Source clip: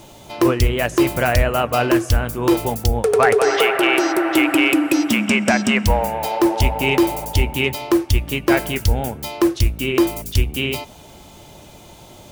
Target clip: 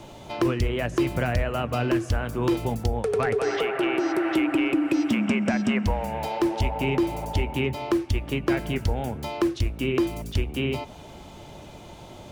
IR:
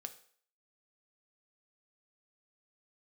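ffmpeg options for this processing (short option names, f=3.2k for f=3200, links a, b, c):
-filter_complex "[0:a]acrossover=split=290|1800[a][b][c];[a]acompressor=threshold=-23dB:ratio=4[d];[b]acompressor=threshold=-29dB:ratio=4[e];[c]acompressor=threshold=-32dB:ratio=4[f];[d][e][f]amix=inputs=3:normalize=0,aemphasis=mode=reproduction:type=50kf"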